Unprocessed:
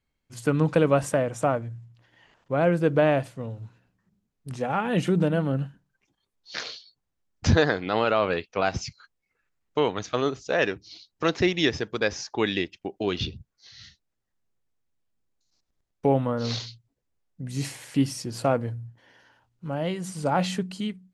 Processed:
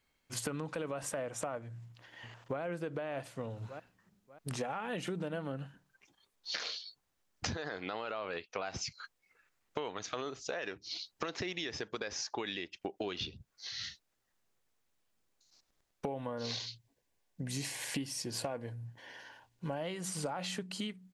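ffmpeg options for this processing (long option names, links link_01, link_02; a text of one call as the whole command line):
ffmpeg -i in.wav -filter_complex "[0:a]asplit=2[link_01][link_02];[link_02]afade=type=in:start_time=1.64:duration=0.01,afade=type=out:start_time=2.61:duration=0.01,aecho=0:1:590|1180|1770:0.158489|0.0475468|0.014264[link_03];[link_01][link_03]amix=inputs=2:normalize=0,asettb=1/sr,asplit=3[link_04][link_05][link_06];[link_04]atrim=end=16.084[link_07];[link_05]atrim=start=16.08:end=19.81,asetpts=PTS-STARTPTS,afade=type=in:duration=0.004:curve=qsin,afade=type=out:start_time=3.726:duration=0.004:curve=qsin,asuperstop=centerf=1300:order=4:qfactor=6[link_08];[link_06]atrim=start=19.806[link_09];[link_07][link_08]acrossfade=duration=0.004:curve1=hsin:curve2=qsin[link_10];[link_10][link_09]acrossfade=duration=0.004:curve1=qsin:curve2=hsin,lowshelf=frequency=300:gain=-11,alimiter=limit=-19.5dB:level=0:latency=1,acompressor=threshold=-42dB:ratio=10,volume=7dB" out.wav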